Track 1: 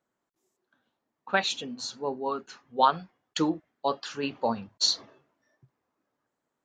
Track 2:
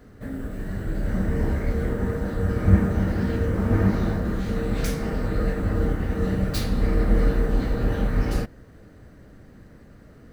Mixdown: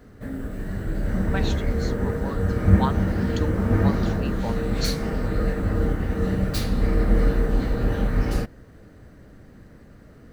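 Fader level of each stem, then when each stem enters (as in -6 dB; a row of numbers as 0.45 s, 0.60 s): -6.5 dB, +0.5 dB; 0.00 s, 0.00 s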